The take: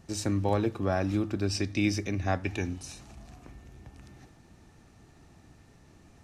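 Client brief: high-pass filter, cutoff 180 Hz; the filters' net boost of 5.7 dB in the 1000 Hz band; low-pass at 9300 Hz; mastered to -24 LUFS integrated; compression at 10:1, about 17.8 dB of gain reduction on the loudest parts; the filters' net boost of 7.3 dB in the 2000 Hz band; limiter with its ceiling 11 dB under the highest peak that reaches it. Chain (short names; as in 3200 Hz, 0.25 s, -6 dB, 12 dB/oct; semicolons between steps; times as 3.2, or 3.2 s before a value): HPF 180 Hz; LPF 9300 Hz; bell 1000 Hz +6.5 dB; bell 2000 Hz +7.5 dB; compressor 10:1, threshold -38 dBFS; gain +24.5 dB; limiter -11.5 dBFS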